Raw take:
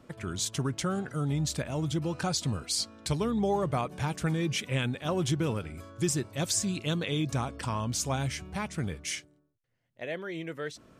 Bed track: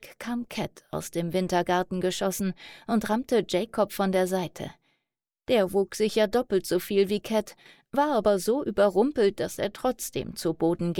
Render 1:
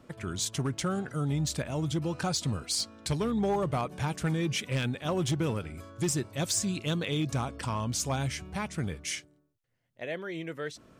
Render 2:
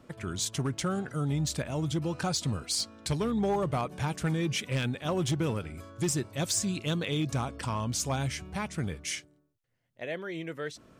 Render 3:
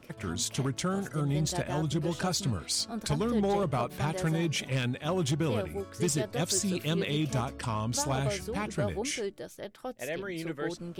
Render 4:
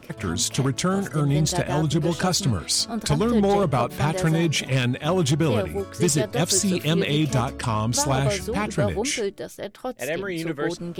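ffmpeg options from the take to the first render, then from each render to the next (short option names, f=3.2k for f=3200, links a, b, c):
-af "asoftclip=type=hard:threshold=-22.5dB"
-af anull
-filter_complex "[1:a]volume=-12.5dB[a];[0:a][a]amix=inputs=2:normalize=0"
-af "volume=8dB"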